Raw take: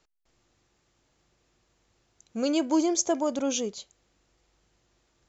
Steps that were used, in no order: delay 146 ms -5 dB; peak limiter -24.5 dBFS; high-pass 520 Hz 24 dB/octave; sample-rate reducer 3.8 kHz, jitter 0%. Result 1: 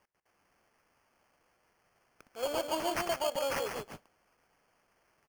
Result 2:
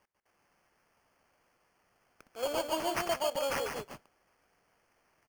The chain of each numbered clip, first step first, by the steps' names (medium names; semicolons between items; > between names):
high-pass > peak limiter > delay > sample-rate reducer; high-pass > sample-rate reducer > peak limiter > delay